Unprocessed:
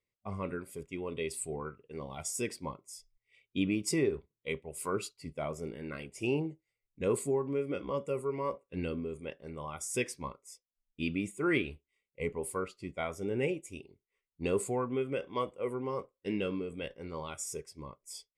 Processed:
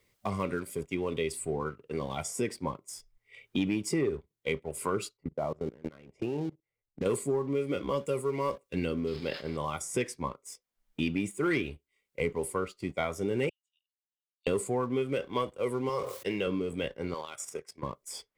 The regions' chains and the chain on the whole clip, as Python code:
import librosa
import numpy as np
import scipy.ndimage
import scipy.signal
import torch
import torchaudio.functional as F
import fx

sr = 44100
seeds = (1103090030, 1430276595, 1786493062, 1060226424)

y = fx.chain(x, sr, fx.lowpass(hz=1100.0, slope=12),
    fx.level_steps(step_db=20),
    fx.dynamic_eq(hz=850.0, q=1.4, threshold_db=-57.0, ratio=4.0, max_db=5), at=(5.17, 7.06))
y = fx.chain(y, sr, fx.crossing_spikes(level_db=-37.0),
    fx.brickwall_lowpass(high_hz=5300.0),
    fx.sustainer(db_per_s=110.0), at=(9.07, 9.57))
y = fx.chain(y, sr, fx.spacing_loss(db_at_10k=45),
    fx.level_steps(step_db=12),
    fx.cheby_ripple_highpass(hz=2800.0, ripple_db=9), at=(13.49, 14.47))
y = fx.chain(y, sr, fx.highpass(hz=130.0, slope=12),
    fx.peak_eq(hz=250.0, db=-14.5, octaves=0.61),
    fx.sustainer(db_per_s=75.0), at=(15.89, 16.47))
y = fx.chain(y, sr, fx.level_steps(step_db=10),
    fx.highpass(hz=810.0, slope=6), at=(17.14, 17.83))
y = fx.leveller(y, sr, passes=1)
y = fx.notch(y, sr, hz=2600.0, q=21.0)
y = fx.band_squash(y, sr, depth_pct=70)